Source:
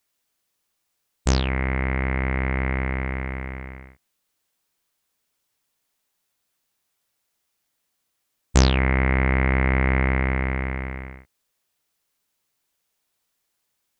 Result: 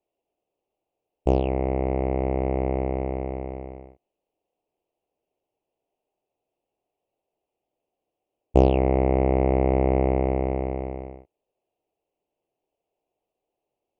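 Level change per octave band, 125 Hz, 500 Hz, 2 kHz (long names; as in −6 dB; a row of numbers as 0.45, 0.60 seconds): −3.0, +7.5, −17.5 decibels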